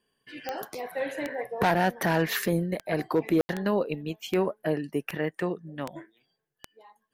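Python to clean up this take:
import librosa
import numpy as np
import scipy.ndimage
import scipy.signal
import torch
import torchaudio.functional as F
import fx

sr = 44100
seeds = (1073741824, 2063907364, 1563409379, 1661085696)

y = fx.fix_declick_ar(x, sr, threshold=10.0)
y = fx.fix_ambience(y, sr, seeds[0], print_start_s=6.12, print_end_s=6.62, start_s=3.41, end_s=3.49)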